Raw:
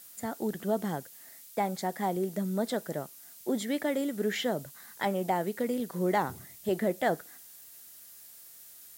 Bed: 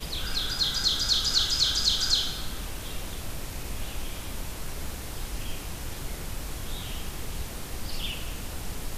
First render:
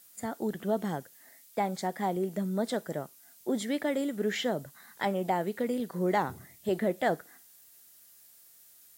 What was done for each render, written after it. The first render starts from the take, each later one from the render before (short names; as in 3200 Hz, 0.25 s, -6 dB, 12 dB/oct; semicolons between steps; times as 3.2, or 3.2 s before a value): noise print and reduce 6 dB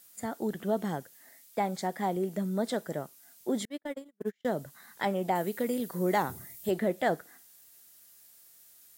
3.65–4.45 gate -28 dBFS, range -45 dB; 5.35–6.71 high shelf 7400 Hz +11 dB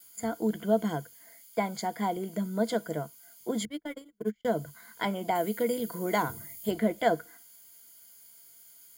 gate with hold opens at -51 dBFS; ripple EQ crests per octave 1.8, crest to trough 12 dB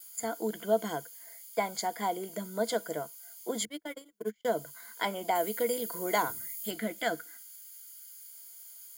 6.32–8.34 spectral gain 330–1200 Hz -7 dB; tone controls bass -13 dB, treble +5 dB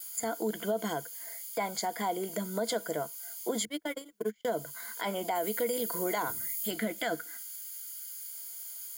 in parallel at +1.5 dB: compressor, threshold -40 dBFS, peak gain reduction 18 dB; on the sum: limiter -21.5 dBFS, peak gain reduction 9 dB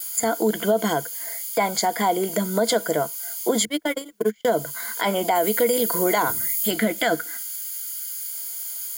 gain +11 dB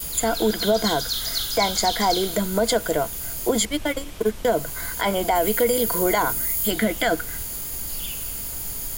add bed -3 dB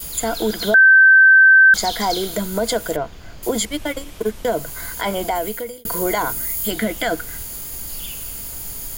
0.74–1.74 bleep 1550 Hz -6 dBFS; 2.96–3.43 air absorption 200 m; 5.25–5.85 fade out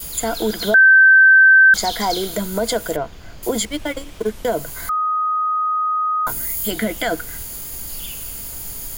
3.62–4.31 median filter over 3 samples; 4.89–6.27 bleep 1250 Hz -16.5 dBFS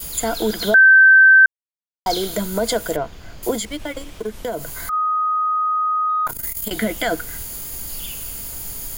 1.46–2.06 mute; 3.55–4.93 compressor 2:1, threshold -25 dBFS; 6.09–6.71 core saturation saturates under 410 Hz